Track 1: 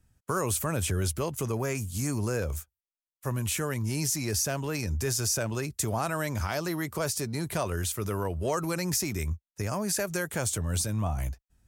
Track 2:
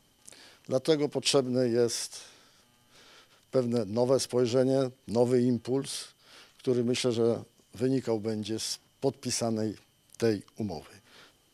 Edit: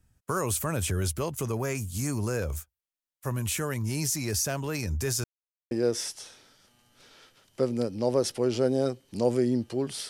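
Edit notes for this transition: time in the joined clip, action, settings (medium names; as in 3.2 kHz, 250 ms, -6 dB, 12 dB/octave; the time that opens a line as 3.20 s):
track 1
5.24–5.71 s: mute
5.71 s: go over to track 2 from 1.66 s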